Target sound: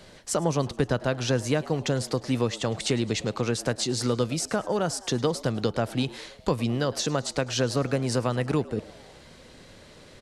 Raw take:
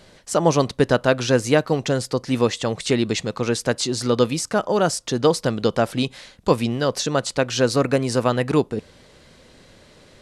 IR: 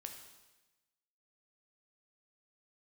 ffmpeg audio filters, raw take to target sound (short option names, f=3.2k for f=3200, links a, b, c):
-filter_complex "[0:a]acrossover=split=130[a][b];[b]acompressor=threshold=-25dB:ratio=3[c];[a][c]amix=inputs=2:normalize=0,asplit=6[d][e][f][g][h][i];[e]adelay=106,afreqshift=97,volume=-20dB[j];[f]adelay=212,afreqshift=194,volume=-24.4dB[k];[g]adelay=318,afreqshift=291,volume=-28.9dB[l];[h]adelay=424,afreqshift=388,volume=-33.3dB[m];[i]adelay=530,afreqshift=485,volume=-37.7dB[n];[d][j][k][l][m][n]amix=inputs=6:normalize=0"